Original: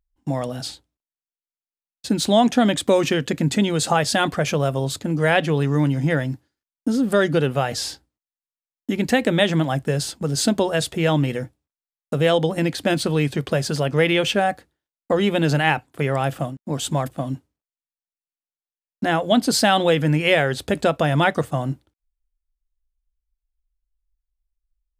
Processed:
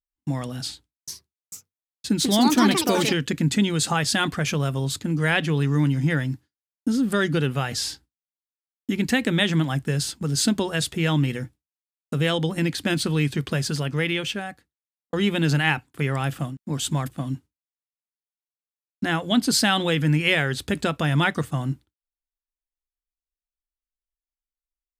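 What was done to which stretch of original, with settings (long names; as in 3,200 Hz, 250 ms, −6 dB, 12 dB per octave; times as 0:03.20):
0:00.63–0:03.18: delay with pitch and tempo change per echo 445 ms, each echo +4 semitones, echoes 2
0:13.59–0:15.13: fade out
whole clip: noise gate with hold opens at −42 dBFS; parametric band 610 Hz −11 dB 1.1 octaves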